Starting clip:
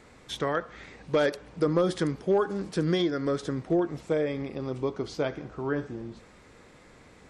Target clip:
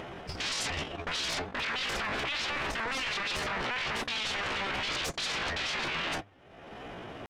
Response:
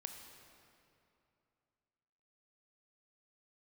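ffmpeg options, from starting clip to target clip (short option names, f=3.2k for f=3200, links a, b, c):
-filter_complex "[0:a]asplit=2[a][b];[b]highpass=f=720:p=1,volume=32dB,asoftclip=type=tanh:threshold=-16dB[c];[a][c]amix=inputs=2:normalize=0,lowpass=f=5.2k:p=1,volume=-6dB,aemphasis=mode=reproduction:type=riaa,agate=range=-48dB:threshold=-23dB:ratio=16:detection=peak,highshelf=f=2.5k:g=-10,areverse,acompressor=threshold=-27dB:ratio=12,areverse,alimiter=level_in=5.5dB:limit=-24dB:level=0:latency=1:release=127,volume=-5.5dB,acompressor=mode=upward:threshold=-46dB:ratio=2.5,aeval=exprs='0.0335*sin(PI/2*6.31*val(0)/0.0335)':c=same,bandreject=f=69.46:t=h:w=4,bandreject=f=138.92:t=h:w=4,bandreject=f=208.38:t=h:w=4,asetrate=64194,aresample=44100,atempo=0.686977"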